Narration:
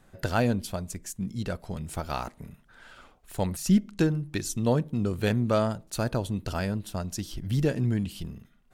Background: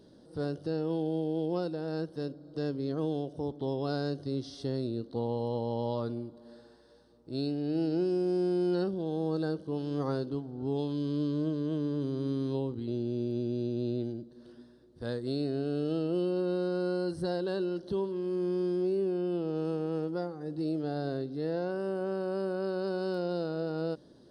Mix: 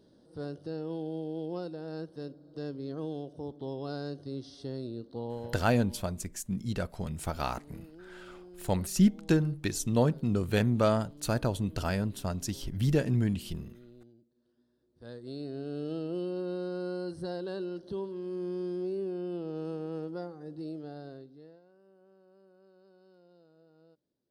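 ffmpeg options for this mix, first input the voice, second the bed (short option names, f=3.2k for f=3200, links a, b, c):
-filter_complex "[0:a]adelay=5300,volume=-1dB[a];[1:a]volume=12.5dB,afade=t=out:st=5.34:d=0.3:silence=0.141254,afade=t=in:st=14.54:d=1.31:silence=0.133352,afade=t=out:st=20.3:d=1.31:silence=0.0630957[b];[a][b]amix=inputs=2:normalize=0"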